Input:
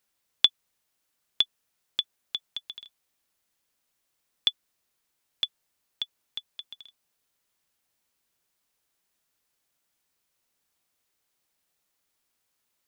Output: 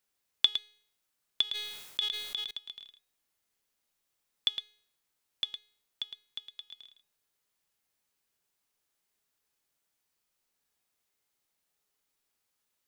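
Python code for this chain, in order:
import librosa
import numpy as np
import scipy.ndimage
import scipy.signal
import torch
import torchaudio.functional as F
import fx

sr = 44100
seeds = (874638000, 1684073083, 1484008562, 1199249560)

y = fx.comb_fb(x, sr, f0_hz=420.0, decay_s=0.62, harmonics='all', damping=0.0, mix_pct=70)
y = y + 10.0 ** (-9.0 / 20.0) * np.pad(y, (int(110 * sr / 1000.0), 0))[:len(y)]
y = fx.sustainer(y, sr, db_per_s=50.0, at=(1.42, 2.51))
y = F.gain(torch.from_numpy(y), 5.5).numpy()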